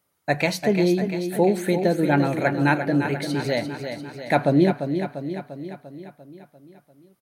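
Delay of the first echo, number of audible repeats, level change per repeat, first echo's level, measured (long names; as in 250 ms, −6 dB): 346 ms, 6, −4.5 dB, −8.0 dB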